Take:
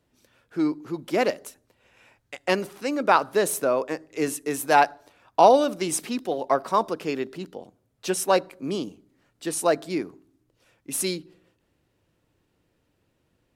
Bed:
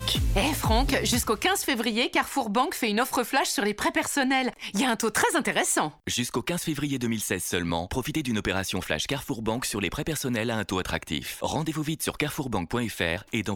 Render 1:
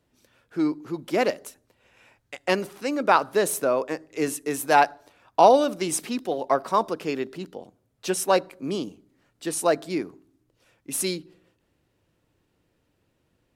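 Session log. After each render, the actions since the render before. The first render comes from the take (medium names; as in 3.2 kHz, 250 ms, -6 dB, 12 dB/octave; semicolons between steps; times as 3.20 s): no audible change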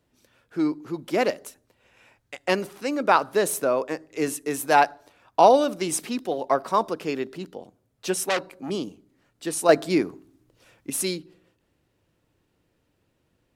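8.29–8.70 s: transformer saturation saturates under 3.1 kHz; 9.69–10.90 s: gain +6 dB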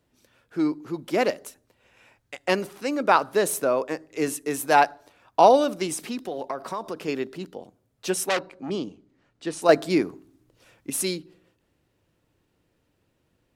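5.86–7.08 s: compression, threshold -26 dBFS; 8.39–9.62 s: distance through air 77 m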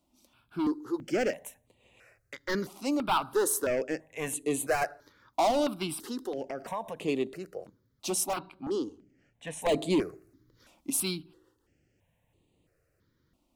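hard clipper -20.5 dBFS, distortion -5 dB; stepped phaser 3 Hz 450–5400 Hz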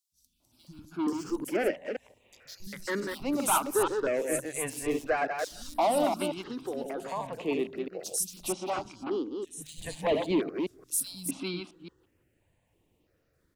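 chunks repeated in reverse 174 ms, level -5 dB; three bands offset in time highs, lows, mids 120/400 ms, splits 160/4200 Hz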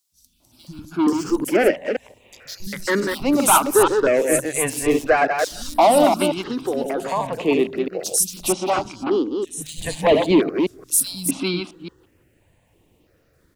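trim +11.5 dB; peak limiter -3 dBFS, peak gain reduction 1 dB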